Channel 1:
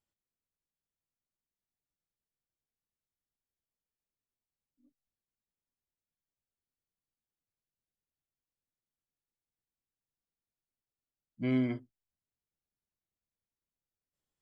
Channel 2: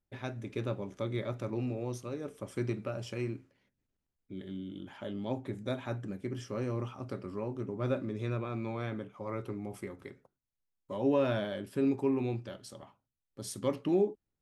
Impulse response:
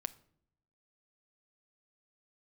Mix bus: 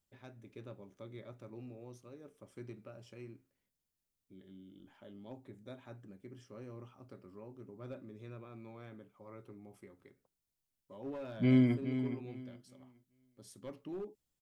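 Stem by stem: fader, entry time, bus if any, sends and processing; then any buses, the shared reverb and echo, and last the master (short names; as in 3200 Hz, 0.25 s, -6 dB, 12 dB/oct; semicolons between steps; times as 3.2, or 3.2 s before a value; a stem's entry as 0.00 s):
-3.0 dB, 0.00 s, no send, echo send -10 dB, high shelf 3200 Hz +9.5 dB
-15.0 dB, 0.00 s, no send, no echo send, low shelf 210 Hz -11.5 dB; overloaded stage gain 26.5 dB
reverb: off
echo: feedback echo 0.418 s, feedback 24%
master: low shelf 310 Hz +10 dB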